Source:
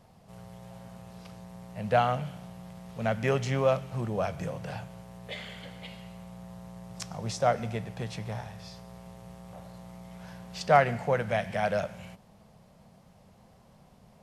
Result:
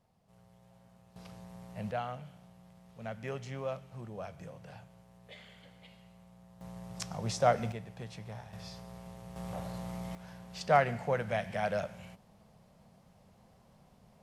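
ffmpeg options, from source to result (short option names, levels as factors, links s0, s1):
-af "asetnsamples=n=441:p=0,asendcmd='1.16 volume volume -3.5dB;1.91 volume volume -12.5dB;6.61 volume volume -1dB;7.72 volume volume -8.5dB;8.53 volume volume -1dB;9.36 volume volume 6dB;10.15 volume volume -4.5dB',volume=0.188"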